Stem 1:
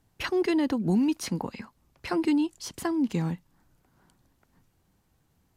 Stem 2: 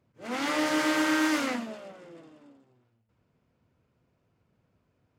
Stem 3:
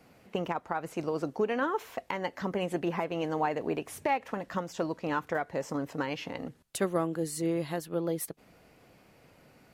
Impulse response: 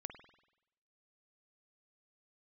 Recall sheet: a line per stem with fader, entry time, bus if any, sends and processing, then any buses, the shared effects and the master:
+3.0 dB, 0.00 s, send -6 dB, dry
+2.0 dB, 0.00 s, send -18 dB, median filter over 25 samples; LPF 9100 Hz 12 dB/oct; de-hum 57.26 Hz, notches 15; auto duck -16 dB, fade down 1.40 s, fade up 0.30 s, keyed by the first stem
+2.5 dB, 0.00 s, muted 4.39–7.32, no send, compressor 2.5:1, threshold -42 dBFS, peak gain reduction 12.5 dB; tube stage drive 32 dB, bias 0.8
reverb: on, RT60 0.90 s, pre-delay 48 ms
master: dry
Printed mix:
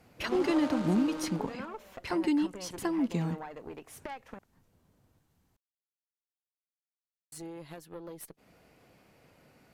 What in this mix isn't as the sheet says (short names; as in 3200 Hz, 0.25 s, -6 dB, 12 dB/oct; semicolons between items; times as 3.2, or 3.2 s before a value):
stem 1 +3.0 dB -> -4.5 dB; reverb return -7.0 dB